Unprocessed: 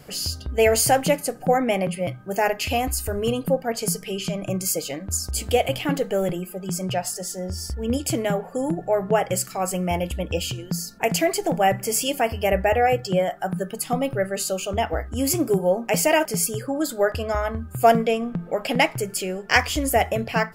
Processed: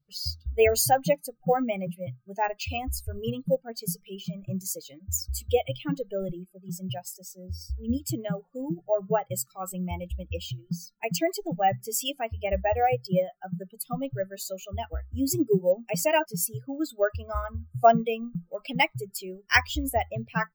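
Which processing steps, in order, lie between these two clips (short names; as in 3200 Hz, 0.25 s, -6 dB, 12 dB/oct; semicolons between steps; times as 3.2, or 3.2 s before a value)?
per-bin expansion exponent 2; careless resampling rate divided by 2×, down filtered, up hold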